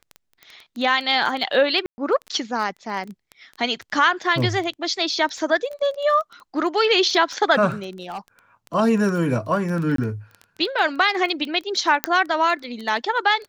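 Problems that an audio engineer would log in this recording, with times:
crackle 12 per s -27 dBFS
1.86–1.98 s: dropout 120 ms
7.90–8.19 s: clipped -25.5 dBFS
9.96–9.98 s: dropout 23 ms
12.04 s: pop -1 dBFS

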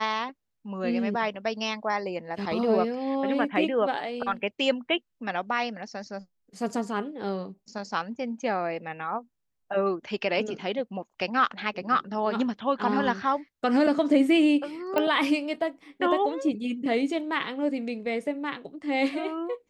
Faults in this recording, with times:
14.98 s: pop -13 dBFS

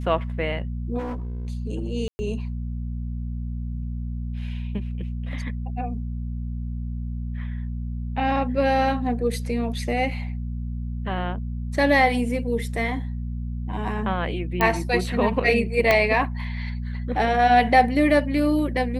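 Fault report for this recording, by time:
hum 60 Hz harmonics 4 -29 dBFS
0.98–1.47 s: clipped -26.5 dBFS
2.08–2.19 s: dropout 110 ms
14.61 s: pop -8 dBFS
15.91 s: pop -5 dBFS

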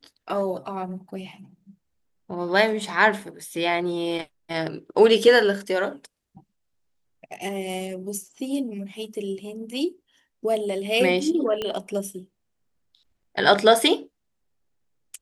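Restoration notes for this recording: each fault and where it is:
11.62 s: pop -15 dBFS

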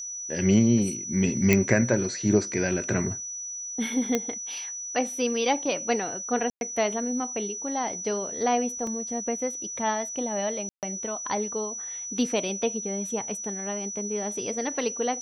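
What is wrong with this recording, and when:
whine 5.9 kHz -33 dBFS
1.53 s: pop -6 dBFS
4.15 s: pop -10 dBFS
6.50–6.61 s: dropout 111 ms
8.87 s: dropout 2.3 ms
10.69–10.83 s: dropout 138 ms

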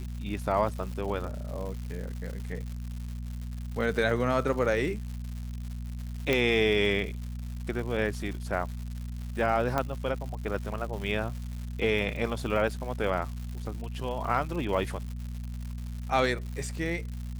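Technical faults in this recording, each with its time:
crackle 240 per s -37 dBFS
hum 60 Hz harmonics 4 -36 dBFS
6.33 s: pop -12 dBFS
9.78 s: pop -14 dBFS

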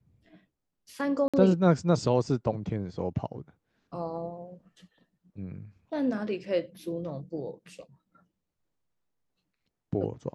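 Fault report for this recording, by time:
1.28–1.34 s: dropout 56 ms

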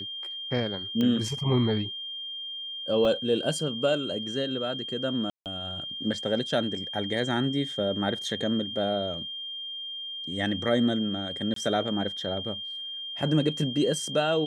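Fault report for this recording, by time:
whine 3.2 kHz -34 dBFS
1.01 s: pop -16 dBFS
3.05 s: dropout 2.5 ms
5.30–5.46 s: dropout 158 ms
11.54–11.56 s: dropout 23 ms

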